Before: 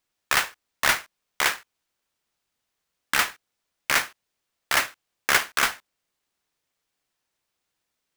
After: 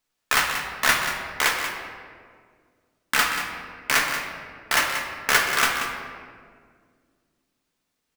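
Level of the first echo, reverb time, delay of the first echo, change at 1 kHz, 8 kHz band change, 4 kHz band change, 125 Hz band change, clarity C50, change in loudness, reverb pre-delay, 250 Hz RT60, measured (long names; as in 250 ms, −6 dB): −10.0 dB, 2.0 s, 184 ms, +3.0 dB, +1.5 dB, +2.0 dB, +4.0 dB, 3.5 dB, +1.5 dB, 4 ms, 2.8 s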